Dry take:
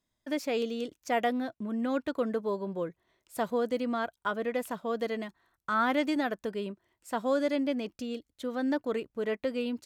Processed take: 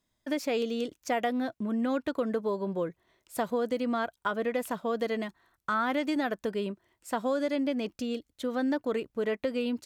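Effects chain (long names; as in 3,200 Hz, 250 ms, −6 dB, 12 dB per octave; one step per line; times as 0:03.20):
downward compressor 4 to 1, threshold −29 dBFS, peak gain reduction 6.5 dB
level +3.5 dB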